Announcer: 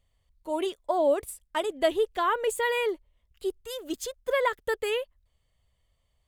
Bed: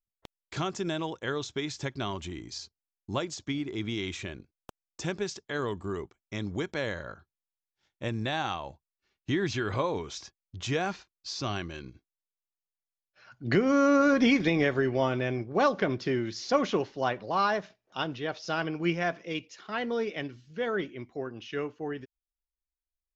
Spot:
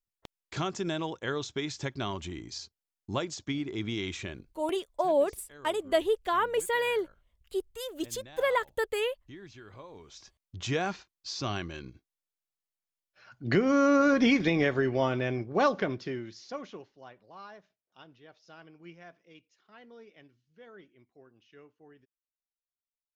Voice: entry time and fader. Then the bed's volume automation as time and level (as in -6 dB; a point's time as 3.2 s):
4.10 s, -1.5 dB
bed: 4.69 s -0.5 dB
4.98 s -19 dB
9.89 s -19 dB
10.43 s -0.5 dB
15.72 s -0.5 dB
17.02 s -21 dB